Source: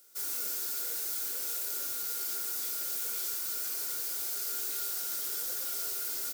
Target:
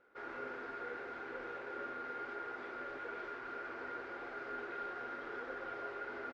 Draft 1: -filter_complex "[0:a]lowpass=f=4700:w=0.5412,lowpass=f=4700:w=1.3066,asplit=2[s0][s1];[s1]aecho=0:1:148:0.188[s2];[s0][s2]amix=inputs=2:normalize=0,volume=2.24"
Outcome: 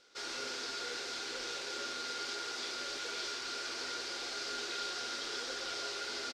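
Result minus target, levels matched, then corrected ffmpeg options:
4 kHz band +19.0 dB
-filter_complex "[0:a]lowpass=f=1800:w=0.5412,lowpass=f=1800:w=1.3066,asplit=2[s0][s1];[s1]aecho=0:1:148:0.188[s2];[s0][s2]amix=inputs=2:normalize=0,volume=2.24"

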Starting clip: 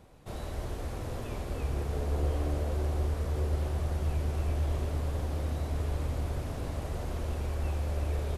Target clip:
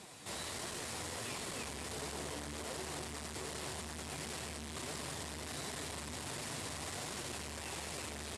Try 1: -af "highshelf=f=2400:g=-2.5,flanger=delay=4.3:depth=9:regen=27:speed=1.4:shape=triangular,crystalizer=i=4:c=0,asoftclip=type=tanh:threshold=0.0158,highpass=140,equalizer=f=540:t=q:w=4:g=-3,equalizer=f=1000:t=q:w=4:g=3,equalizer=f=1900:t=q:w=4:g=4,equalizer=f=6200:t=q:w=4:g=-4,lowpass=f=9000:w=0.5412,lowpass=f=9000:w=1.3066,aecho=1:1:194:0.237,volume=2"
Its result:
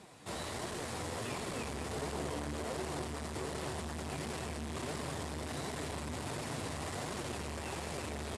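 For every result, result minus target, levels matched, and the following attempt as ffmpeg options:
4 kHz band -3.5 dB; saturation: distortion -4 dB
-af "highshelf=f=2400:g=6.5,flanger=delay=4.3:depth=9:regen=27:speed=1.4:shape=triangular,crystalizer=i=4:c=0,asoftclip=type=tanh:threshold=0.0158,highpass=140,equalizer=f=540:t=q:w=4:g=-3,equalizer=f=1000:t=q:w=4:g=3,equalizer=f=1900:t=q:w=4:g=4,equalizer=f=6200:t=q:w=4:g=-4,lowpass=f=9000:w=0.5412,lowpass=f=9000:w=1.3066,aecho=1:1:194:0.237,volume=2"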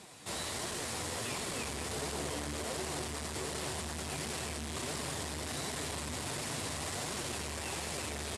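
saturation: distortion -4 dB
-af "highshelf=f=2400:g=6.5,flanger=delay=4.3:depth=9:regen=27:speed=1.4:shape=triangular,crystalizer=i=4:c=0,asoftclip=type=tanh:threshold=0.00708,highpass=140,equalizer=f=540:t=q:w=4:g=-3,equalizer=f=1000:t=q:w=4:g=3,equalizer=f=1900:t=q:w=4:g=4,equalizer=f=6200:t=q:w=4:g=-4,lowpass=f=9000:w=0.5412,lowpass=f=9000:w=1.3066,aecho=1:1:194:0.237,volume=2"

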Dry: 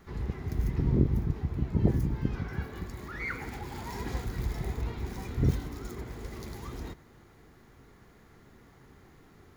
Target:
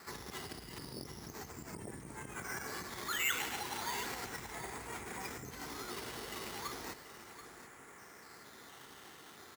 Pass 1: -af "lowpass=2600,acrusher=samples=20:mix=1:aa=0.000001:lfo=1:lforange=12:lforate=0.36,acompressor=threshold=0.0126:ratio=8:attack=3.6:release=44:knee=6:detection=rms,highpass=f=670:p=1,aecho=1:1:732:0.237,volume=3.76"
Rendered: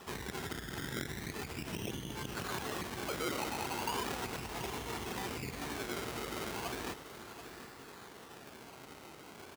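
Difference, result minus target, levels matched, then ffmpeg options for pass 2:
500 Hz band +4.5 dB; decimation with a swept rate: distortion +7 dB
-af "lowpass=2600,acrusher=samples=7:mix=1:aa=0.000001:lfo=1:lforange=4.2:lforate=0.36,acompressor=threshold=0.0126:ratio=8:attack=3.6:release=44:knee=6:detection=rms,highpass=f=1500:p=1,aecho=1:1:732:0.237,volume=3.76"

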